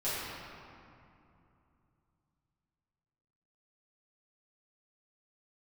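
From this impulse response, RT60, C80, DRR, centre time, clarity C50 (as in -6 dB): 2.7 s, -1.5 dB, -13.0 dB, 0.164 s, -3.5 dB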